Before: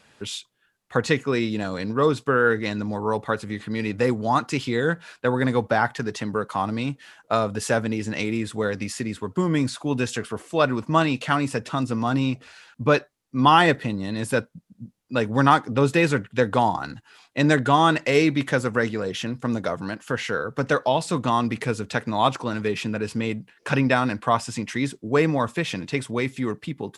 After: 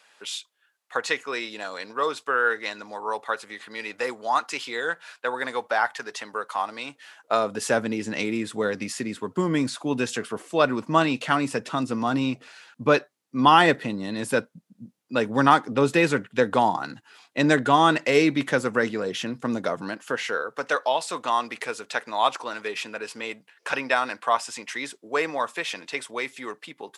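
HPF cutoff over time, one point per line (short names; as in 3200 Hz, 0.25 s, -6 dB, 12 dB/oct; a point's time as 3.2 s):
6.81 s 670 Hz
7.73 s 190 Hz
19.75 s 190 Hz
20.65 s 590 Hz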